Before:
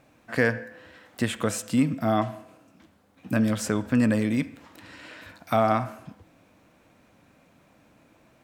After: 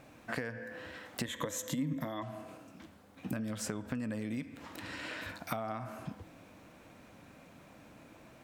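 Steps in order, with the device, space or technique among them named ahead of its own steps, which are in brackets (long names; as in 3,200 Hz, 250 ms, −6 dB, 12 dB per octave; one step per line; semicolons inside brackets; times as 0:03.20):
serial compression, leveller first (downward compressor 3 to 1, threshold −24 dBFS, peak gain reduction 6.5 dB; downward compressor 6 to 1, threshold −38 dBFS, peak gain reduction 15.5 dB)
0:01.25–0:02.23: EQ curve with evenly spaced ripples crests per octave 1.1, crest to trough 12 dB
level +3 dB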